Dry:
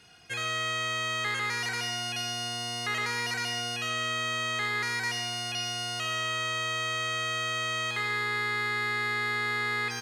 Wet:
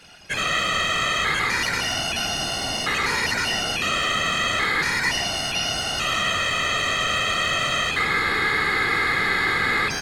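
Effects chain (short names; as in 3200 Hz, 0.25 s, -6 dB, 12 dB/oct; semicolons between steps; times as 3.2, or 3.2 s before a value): whisperiser; gain +8 dB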